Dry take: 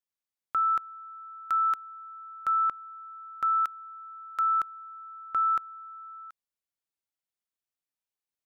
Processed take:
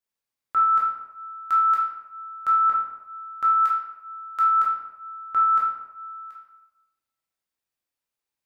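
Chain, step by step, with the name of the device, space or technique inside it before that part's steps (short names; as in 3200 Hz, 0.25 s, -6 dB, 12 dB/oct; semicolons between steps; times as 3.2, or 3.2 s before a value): bathroom (reverb RT60 1.0 s, pre-delay 9 ms, DRR -5 dB)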